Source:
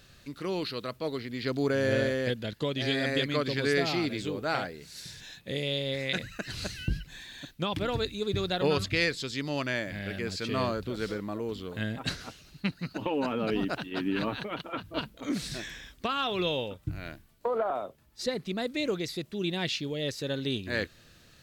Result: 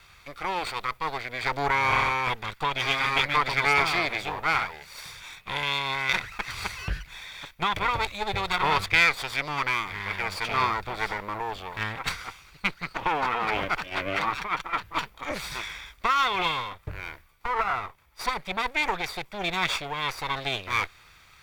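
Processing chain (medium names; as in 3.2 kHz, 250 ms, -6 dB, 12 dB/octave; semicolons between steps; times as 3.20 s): comb filter that takes the minimum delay 0.86 ms; graphic EQ 125/250/500/1000/2000/8000 Hz -5/-12/+4/+5/+9/-3 dB; trim +2.5 dB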